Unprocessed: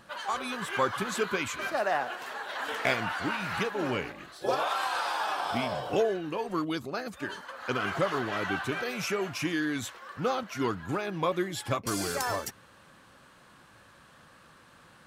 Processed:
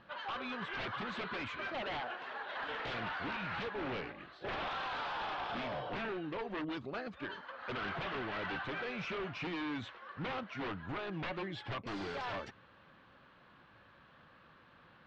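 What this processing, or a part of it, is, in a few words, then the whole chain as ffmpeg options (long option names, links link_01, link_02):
synthesiser wavefolder: -af "aeval=exprs='0.0376*(abs(mod(val(0)/0.0376+3,4)-2)-1)':channel_layout=same,lowpass=frequency=3700:width=0.5412,lowpass=frequency=3700:width=1.3066,volume=-5dB"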